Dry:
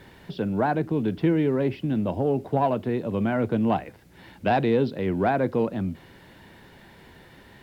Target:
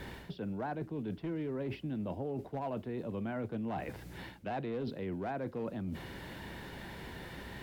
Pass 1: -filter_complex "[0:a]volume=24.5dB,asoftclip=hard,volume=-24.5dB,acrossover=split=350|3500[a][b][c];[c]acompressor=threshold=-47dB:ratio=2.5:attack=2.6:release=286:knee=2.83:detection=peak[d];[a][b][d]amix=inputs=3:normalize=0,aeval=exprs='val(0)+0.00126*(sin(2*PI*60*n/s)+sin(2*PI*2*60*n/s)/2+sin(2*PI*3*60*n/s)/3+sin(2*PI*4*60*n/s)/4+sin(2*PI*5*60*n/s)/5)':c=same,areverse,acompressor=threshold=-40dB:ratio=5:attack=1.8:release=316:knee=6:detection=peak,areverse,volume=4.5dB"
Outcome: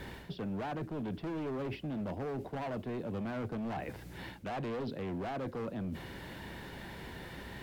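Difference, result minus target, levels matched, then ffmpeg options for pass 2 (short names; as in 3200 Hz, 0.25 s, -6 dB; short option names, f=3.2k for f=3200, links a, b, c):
overloaded stage: distortion +15 dB
-filter_complex "[0:a]volume=15.5dB,asoftclip=hard,volume=-15.5dB,acrossover=split=350|3500[a][b][c];[c]acompressor=threshold=-47dB:ratio=2.5:attack=2.6:release=286:knee=2.83:detection=peak[d];[a][b][d]amix=inputs=3:normalize=0,aeval=exprs='val(0)+0.00126*(sin(2*PI*60*n/s)+sin(2*PI*2*60*n/s)/2+sin(2*PI*3*60*n/s)/3+sin(2*PI*4*60*n/s)/4+sin(2*PI*5*60*n/s)/5)':c=same,areverse,acompressor=threshold=-40dB:ratio=5:attack=1.8:release=316:knee=6:detection=peak,areverse,volume=4.5dB"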